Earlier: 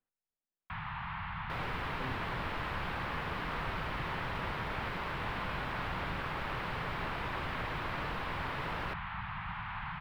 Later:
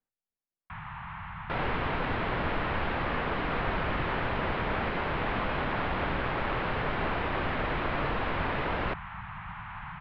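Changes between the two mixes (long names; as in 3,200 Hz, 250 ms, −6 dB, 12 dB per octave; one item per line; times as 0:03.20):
second sound +10.0 dB
master: add Bessel low-pass filter 2,600 Hz, order 4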